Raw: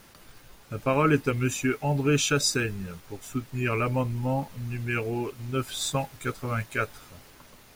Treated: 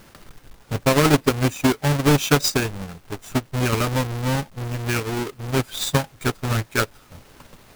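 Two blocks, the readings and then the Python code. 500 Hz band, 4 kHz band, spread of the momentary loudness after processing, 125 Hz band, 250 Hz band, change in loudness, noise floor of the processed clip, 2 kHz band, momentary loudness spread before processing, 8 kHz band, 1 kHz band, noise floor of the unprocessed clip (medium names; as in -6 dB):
+5.0 dB, +6.5 dB, 11 LU, +6.0 dB, +6.5 dB, +5.5 dB, -52 dBFS, +5.0 dB, 12 LU, +3.5 dB, +5.5 dB, -53 dBFS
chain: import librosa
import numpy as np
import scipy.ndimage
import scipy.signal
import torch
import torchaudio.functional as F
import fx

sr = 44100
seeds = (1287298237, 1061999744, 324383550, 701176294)

y = fx.halfwave_hold(x, sr)
y = fx.transient(y, sr, attack_db=5, sustain_db=-7)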